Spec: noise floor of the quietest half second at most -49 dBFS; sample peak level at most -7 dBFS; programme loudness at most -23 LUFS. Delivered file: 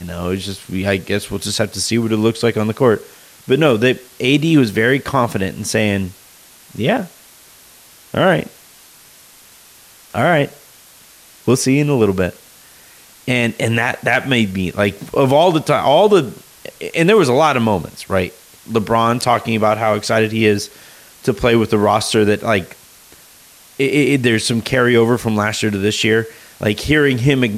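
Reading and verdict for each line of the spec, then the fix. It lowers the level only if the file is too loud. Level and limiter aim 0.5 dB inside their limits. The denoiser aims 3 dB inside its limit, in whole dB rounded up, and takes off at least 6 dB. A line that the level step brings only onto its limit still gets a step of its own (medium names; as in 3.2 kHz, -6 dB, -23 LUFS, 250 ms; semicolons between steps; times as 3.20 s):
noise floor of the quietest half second -45 dBFS: fail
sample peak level -2.0 dBFS: fail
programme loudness -16.0 LUFS: fail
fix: trim -7.5 dB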